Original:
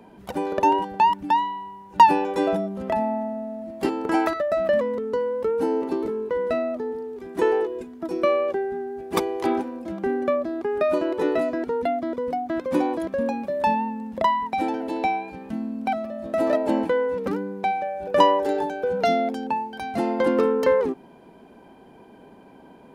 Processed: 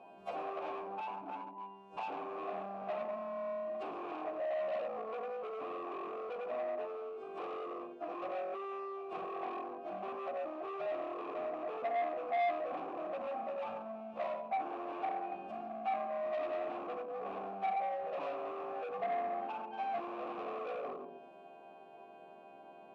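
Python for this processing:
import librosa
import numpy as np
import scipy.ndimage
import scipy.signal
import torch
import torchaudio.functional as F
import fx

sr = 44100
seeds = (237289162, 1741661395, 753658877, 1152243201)

y = fx.freq_snap(x, sr, grid_st=2)
y = fx.env_lowpass_down(y, sr, base_hz=440.0, full_db=-21.0)
y = fx.low_shelf(y, sr, hz=460.0, db=8.0)
y = fx.rev_schroeder(y, sr, rt60_s=0.85, comb_ms=31, drr_db=1.5)
y = np.clip(10.0 ** (28.0 / 20.0) * y, -1.0, 1.0) / 10.0 ** (28.0 / 20.0)
y = fx.vowel_filter(y, sr, vowel='a')
y = fx.transformer_sat(y, sr, knee_hz=960.0)
y = F.gain(torch.from_numpy(y), 3.0).numpy()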